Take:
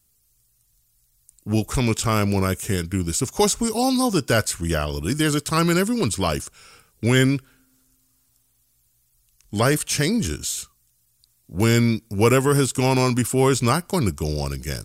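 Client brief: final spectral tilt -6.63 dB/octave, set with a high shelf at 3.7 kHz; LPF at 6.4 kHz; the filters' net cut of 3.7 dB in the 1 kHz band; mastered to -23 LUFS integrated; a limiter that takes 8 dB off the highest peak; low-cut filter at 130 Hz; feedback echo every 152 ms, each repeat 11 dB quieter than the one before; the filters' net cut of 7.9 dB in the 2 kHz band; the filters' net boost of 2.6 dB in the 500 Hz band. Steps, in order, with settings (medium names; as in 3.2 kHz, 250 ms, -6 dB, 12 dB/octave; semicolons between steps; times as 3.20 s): high-pass 130 Hz; low-pass 6.4 kHz; peaking EQ 500 Hz +4.5 dB; peaking EQ 1 kHz -3.5 dB; peaking EQ 2 kHz -8 dB; treble shelf 3.7 kHz -6.5 dB; peak limiter -11.5 dBFS; feedback delay 152 ms, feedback 28%, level -11 dB; trim +0.5 dB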